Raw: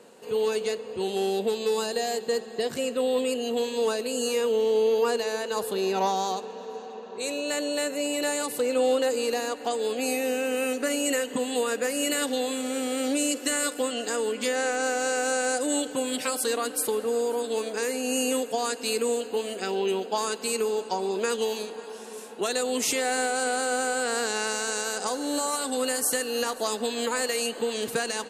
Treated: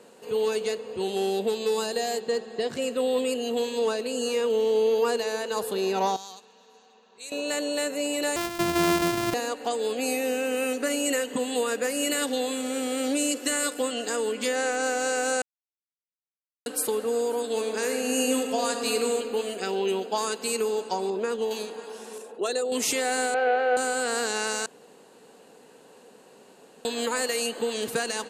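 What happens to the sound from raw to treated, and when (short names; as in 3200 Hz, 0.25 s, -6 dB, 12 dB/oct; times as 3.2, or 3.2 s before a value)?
2.2–2.82 air absorption 50 m
3.79–4.5 high shelf 9800 Hz -11 dB
6.16–7.32 passive tone stack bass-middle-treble 5-5-5
8.36–9.34 sample sorter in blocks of 128 samples
15.42–16.66 mute
17.44–19.05 reverb throw, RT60 2.6 s, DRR 4 dB
21.1–21.51 high shelf 2100 Hz -11.5 dB
22.18–22.72 formant sharpening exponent 1.5
23.34–23.77 speaker cabinet 290–2900 Hz, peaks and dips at 320 Hz -9 dB, 480 Hz +7 dB, 680 Hz +9 dB, 1100 Hz -7 dB, 1700 Hz +4 dB, 2400 Hz +4 dB
24.66–26.85 room tone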